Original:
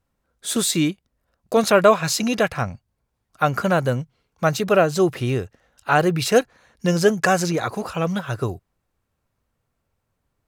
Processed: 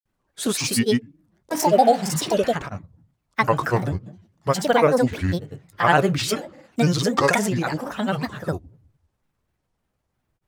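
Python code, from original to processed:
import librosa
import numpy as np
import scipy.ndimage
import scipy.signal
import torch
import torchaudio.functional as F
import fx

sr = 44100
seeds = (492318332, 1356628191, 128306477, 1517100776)

y = fx.room_shoebox(x, sr, seeds[0], volume_m3=360.0, walls='furnished', distance_m=0.39)
y = fx.spec_repair(y, sr, seeds[1], start_s=1.7, length_s=0.75, low_hz=670.0, high_hz=2800.0, source='both')
y = fx.granulator(y, sr, seeds[2], grain_ms=100.0, per_s=20.0, spray_ms=100.0, spread_st=7)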